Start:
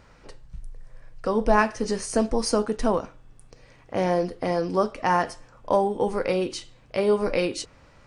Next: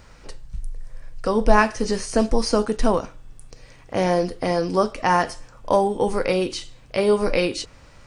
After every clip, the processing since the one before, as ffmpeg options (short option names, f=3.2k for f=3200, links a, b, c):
-filter_complex "[0:a]lowshelf=f=71:g=7,acrossover=split=4700[a][b];[b]acompressor=threshold=-45dB:ratio=4:attack=1:release=60[c];[a][c]amix=inputs=2:normalize=0,highshelf=f=3.7k:g=8.5,volume=2.5dB"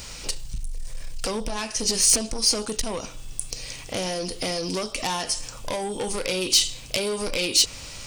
-af "acompressor=threshold=-27dB:ratio=12,asoftclip=type=tanh:threshold=-28.5dB,aexciter=amount=4.2:drive=5.4:freq=2.4k,volume=5.5dB"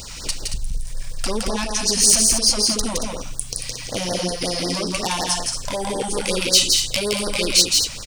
-filter_complex "[0:a]asplit=2[a][b];[b]aecho=0:1:166.2|227.4:0.708|0.398[c];[a][c]amix=inputs=2:normalize=0,afftfilt=real='re*(1-between(b*sr/1024,340*pow(2800/340,0.5+0.5*sin(2*PI*5.4*pts/sr))/1.41,340*pow(2800/340,0.5+0.5*sin(2*PI*5.4*pts/sr))*1.41))':imag='im*(1-between(b*sr/1024,340*pow(2800/340,0.5+0.5*sin(2*PI*5.4*pts/sr))/1.41,340*pow(2800/340,0.5+0.5*sin(2*PI*5.4*pts/sr))*1.41))':win_size=1024:overlap=0.75,volume=3.5dB"